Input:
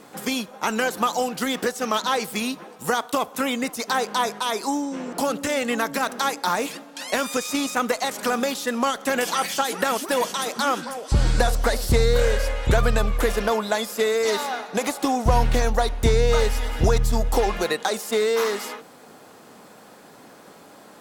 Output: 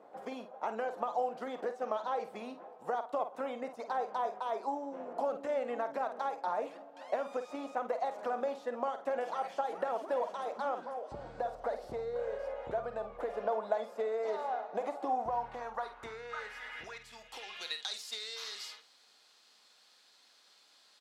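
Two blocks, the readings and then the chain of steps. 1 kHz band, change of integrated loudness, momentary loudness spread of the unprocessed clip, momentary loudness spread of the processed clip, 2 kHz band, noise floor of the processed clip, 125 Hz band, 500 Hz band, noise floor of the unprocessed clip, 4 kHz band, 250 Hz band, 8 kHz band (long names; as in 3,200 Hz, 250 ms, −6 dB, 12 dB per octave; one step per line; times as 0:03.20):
−10.5 dB, −14.0 dB, 6 LU, 9 LU, −18.5 dB, −65 dBFS, −32.5 dB, −11.5 dB, −47 dBFS, −17.0 dB, −19.5 dB, below −25 dB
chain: double-tracking delay 50 ms −10.5 dB
downward compressor 4 to 1, threshold −20 dBFS, peak gain reduction 7.5 dB
band-pass filter sweep 660 Hz → 4,200 Hz, 0:15.04–0:18.00
level −3.5 dB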